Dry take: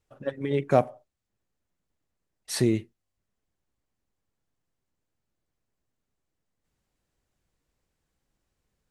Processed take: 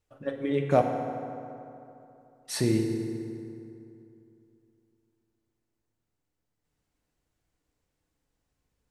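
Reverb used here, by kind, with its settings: FDN reverb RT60 2.9 s, high-frequency decay 0.55×, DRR 2.5 dB; gain -2.5 dB

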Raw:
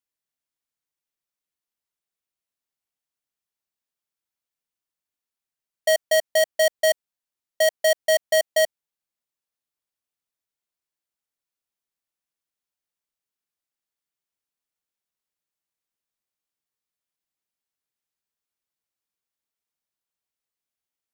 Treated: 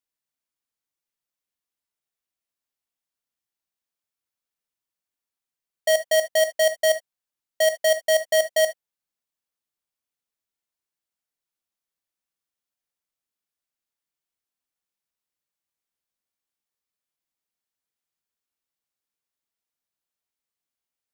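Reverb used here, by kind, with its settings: non-linear reverb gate 90 ms flat, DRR 9 dB; gain -1 dB

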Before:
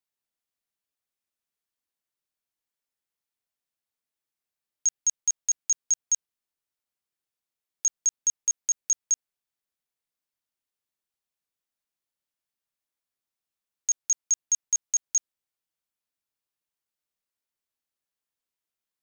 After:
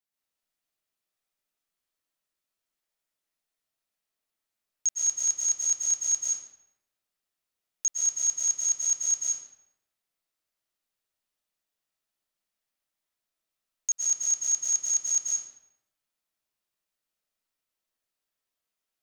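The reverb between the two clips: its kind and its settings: digital reverb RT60 0.86 s, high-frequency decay 0.8×, pre-delay 95 ms, DRR -5 dB; gain -2.5 dB

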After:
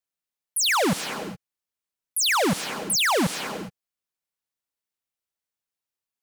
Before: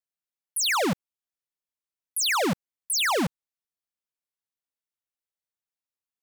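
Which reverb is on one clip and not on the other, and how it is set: non-linear reverb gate 0.44 s rising, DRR 10 dB; gain +2.5 dB

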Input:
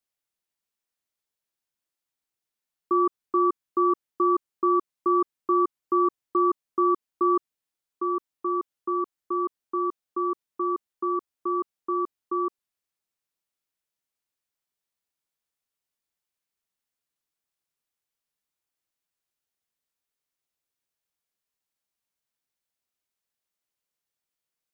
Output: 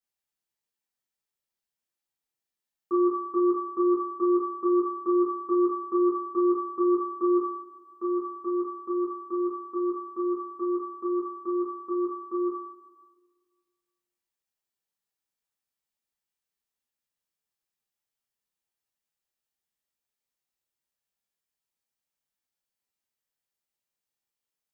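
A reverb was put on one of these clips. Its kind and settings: two-slope reverb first 0.38 s, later 1.7 s, from -17 dB, DRR -5.5 dB; gain -9 dB

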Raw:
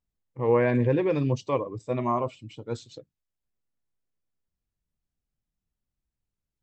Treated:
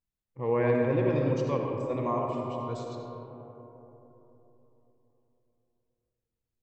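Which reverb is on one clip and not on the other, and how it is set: digital reverb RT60 3.7 s, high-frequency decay 0.3×, pre-delay 30 ms, DRR 0.5 dB; gain -5.5 dB

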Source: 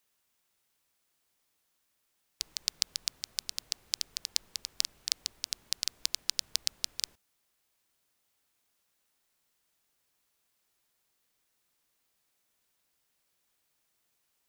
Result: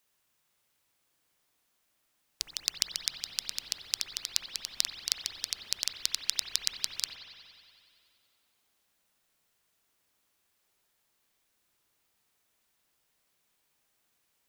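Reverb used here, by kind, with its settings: spring tank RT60 2.4 s, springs 59 ms, chirp 35 ms, DRR 2.5 dB; gain +1 dB

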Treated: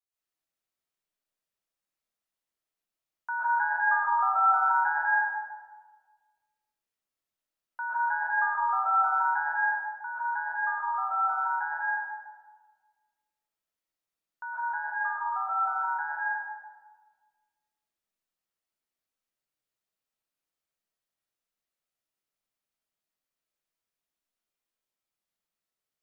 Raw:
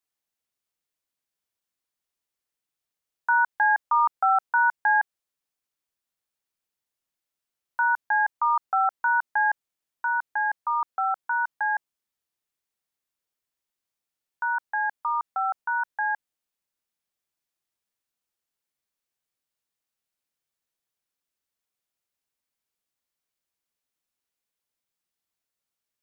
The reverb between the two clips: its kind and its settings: digital reverb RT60 1.5 s, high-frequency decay 0.45×, pre-delay 90 ms, DRR -9.5 dB; gain -11.5 dB

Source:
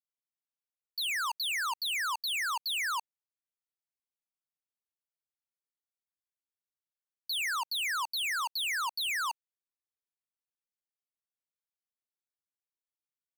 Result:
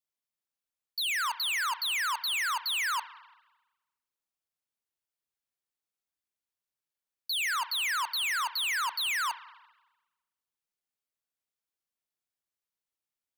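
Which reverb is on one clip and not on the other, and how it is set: spring tank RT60 1.1 s, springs 37/56 ms, chirp 30 ms, DRR 13.5 dB; gain +2 dB

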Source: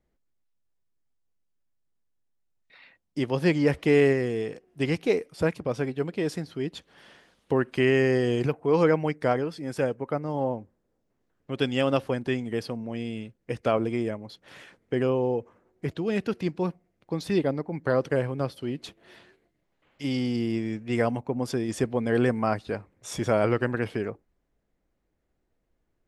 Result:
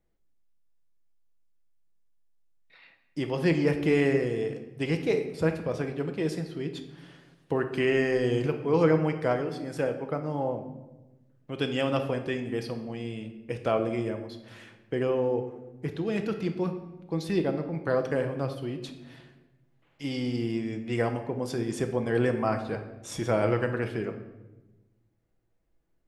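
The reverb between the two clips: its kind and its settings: shoebox room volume 520 m³, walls mixed, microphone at 0.69 m; gain -3 dB

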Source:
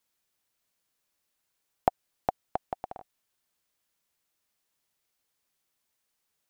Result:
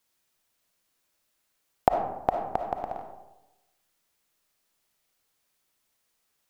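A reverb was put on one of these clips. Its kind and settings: digital reverb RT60 1 s, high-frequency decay 0.45×, pre-delay 15 ms, DRR 3.5 dB; gain +3.5 dB

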